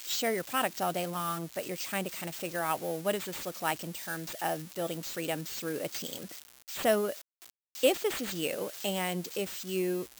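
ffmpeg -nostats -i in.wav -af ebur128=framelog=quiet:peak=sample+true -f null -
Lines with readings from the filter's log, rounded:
Integrated loudness:
  I:         -32.8 LUFS
  Threshold: -43.1 LUFS
Loudness range:
  LRA:         3.3 LU
  Threshold: -53.4 LUFS
  LRA low:   -35.1 LUFS
  LRA high:  -31.9 LUFS
Sample peak:
  Peak:      -13.7 dBFS
True peak:
  Peak:      -12.9 dBFS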